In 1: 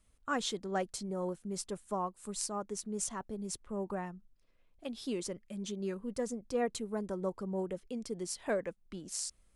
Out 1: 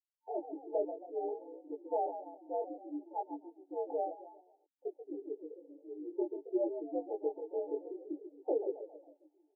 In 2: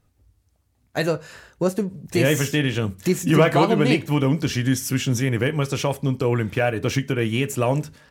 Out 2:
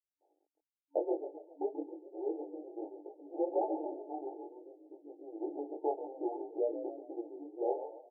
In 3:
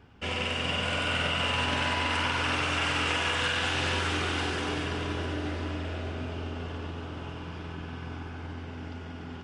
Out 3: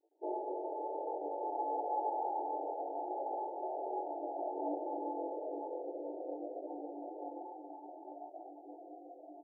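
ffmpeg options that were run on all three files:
-filter_complex "[0:a]afftdn=nr=33:nf=-38,acontrast=71,equalizer=f=420:t=o:w=0.83:g=-7,acompressor=threshold=-27dB:ratio=20,asplit=5[a][b][c][d][e];[b]adelay=136,afreqshift=44,volume=-10.5dB[f];[c]adelay=272,afreqshift=88,volume=-18dB[g];[d]adelay=408,afreqshift=132,volume=-25.6dB[h];[e]adelay=544,afreqshift=176,volume=-33.1dB[i];[a][f][g][h][i]amix=inputs=5:normalize=0,afreqshift=-130,acrusher=bits=10:mix=0:aa=0.000001,flanger=delay=17.5:depth=5.5:speed=0.58,afftfilt=real='re*between(b*sr/4096,290,900)':imag='im*between(b*sr/4096,290,900)':win_size=4096:overlap=0.75,volume=4.5dB" -ar 44100 -c:a aac -b:a 192k

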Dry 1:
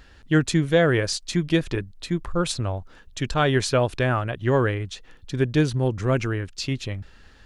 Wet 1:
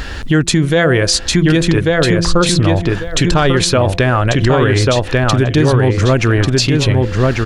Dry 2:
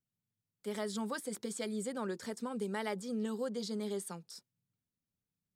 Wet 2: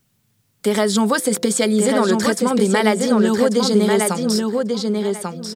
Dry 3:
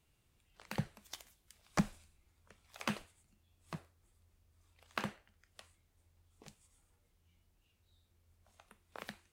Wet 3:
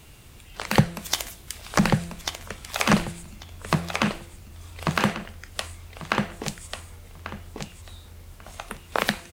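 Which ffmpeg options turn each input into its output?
-filter_complex "[0:a]bandreject=f=170.6:t=h:w=4,bandreject=f=341.2:t=h:w=4,bandreject=f=511.8:t=h:w=4,bandreject=f=682.4:t=h:w=4,acompressor=threshold=-44dB:ratio=2,asplit=2[a][b];[b]adelay=1142,lowpass=f=4.5k:p=1,volume=-3.5dB,asplit=2[c][d];[d]adelay=1142,lowpass=f=4.5k:p=1,volume=0.2,asplit=2[e][f];[f]adelay=1142,lowpass=f=4.5k:p=1,volume=0.2[g];[a][c][e][g]amix=inputs=4:normalize=0,alimiter=level_in=28.5dB:limit=-1dB:release=50:level=0:latency=1,volume=-2.5dB"

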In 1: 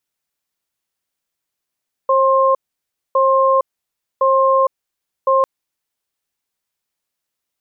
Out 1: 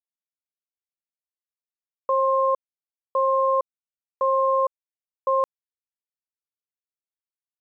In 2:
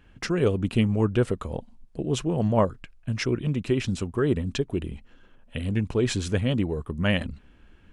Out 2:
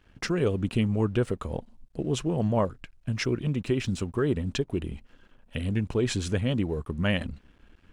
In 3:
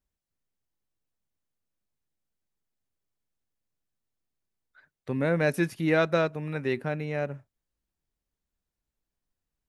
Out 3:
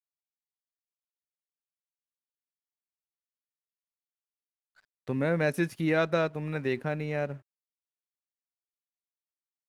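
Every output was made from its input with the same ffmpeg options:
-filter_complex "[0:a]asplit=2[a][b];[b]acompressor=threshold=-27dB:ratio=6,volume=-2.5dB[c];[a][c]amix=inputs=2:normalize=0,alimiter=limit=-10dB:level=0:latency=1,aeval=exprs='sgn(val(0))*max(abs(val(0))-0.00188,0)':c=same,volume=-4.5dB"

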